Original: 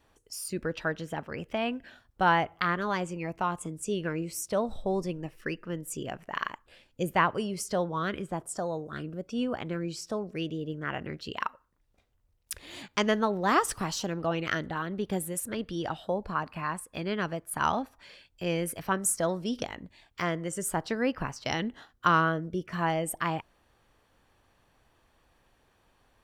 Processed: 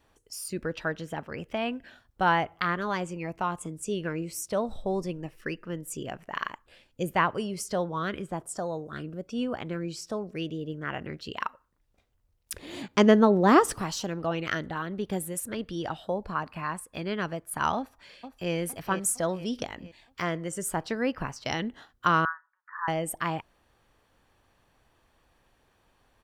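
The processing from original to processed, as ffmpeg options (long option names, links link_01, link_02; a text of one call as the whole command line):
ffmpeg -i in.wav -filter_complex "[0:a]asettb=1/sr,asplit=3[link_01][link_02][link_03];[link_01]atrim=end=12.534[link_04];[link_02]atrim=start=12.53:end=13.81,asetpts=PTS-STARTPTS,afade=type=in:duration=0.004:curve=qsin,afade=type=out:start_time=1.276:duration=0.004:curve=qsin,equalizer=frequency=280:width_type=o:width=2.7:gain=10.5[link_05];[link_03]atrim=start=13.806[link_06];[link_04][link_05]acrossfade=duration=0.004:curve1=hsin:curve2=qsin[link_07];[link_07][link_06]acrossfade=duration=0.004:curve1=qsin:curve2=hsin,asplit=2[link_08][link_09];[link_09]afade=type=in:start_time=17.77:duration=0.01,afade=type=out:start_time=18.53:duration=0.01,aecho=0:1:460|920|1380|1840|2300|2760:0.334965|0.167483|0.0837414|0.0418707|0.0209353|0.0104677[link_10];[link_08][link_10]amix=inputs=2:normalize=0,asettb=1/sr,asplit=3[link_11][link_12][link_13];[link_11]atrim=end=22.254[link_14];[link_12]atrim=start=22.25:end=22.88,asetpts=PTS-STARTPTS,afade=type=in:duration=0.004:curve=qsin,afade=type=out:start_time=0.626:duration=0.004:curve=qsin,asuperpass=centerf=1300:order=12:qfactor=1.4[link_15];[link_13]atrim=start=22.876[link_16];[link_14][link_15]acrossfade=duration=0.004:curve1=hsin:curve2=qsin[link_17];[link_17][link_16]acrossfade=duration=0.004:curve1=qsin:curve2=hsin" out.wav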